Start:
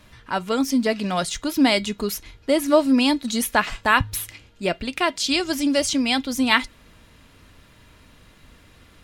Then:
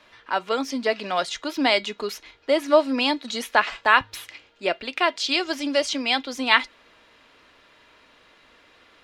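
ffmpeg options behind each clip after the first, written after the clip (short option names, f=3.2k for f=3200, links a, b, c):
-filter_complex "[0:a]acrossover=split=330 5500:gain=0.0891 1 0.141[a][b][c];[a][b][c]amix=inputs=3:normalize=0,volume=1dB"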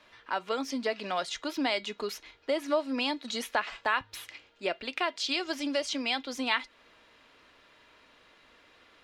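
-af "acompressor=threshold=-24dB:ratio=2,volume=-4.5dB"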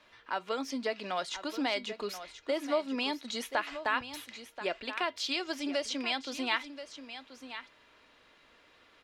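-af "aecho=1:1:1031:0.251,volume=-2.5dB"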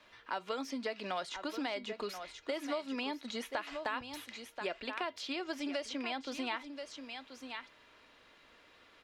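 -filter_complex "[0:a]acrossover=split=1100|2700[a][b][c];[a]acompressor=threshold=-36dB:ratio=4[d];[b]acompressor=threshold=-43dB:ratio=4[e];[c]acompressor=threshold=-48dB:ratio=4[f];[d][e][f]amix=inputs=3:normalize=0"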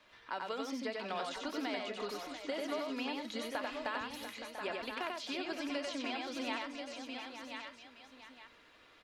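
-af "aecho=1:1:92|140|691|868:0.708|0.1|0.316|0.299,volume=-2.5dB"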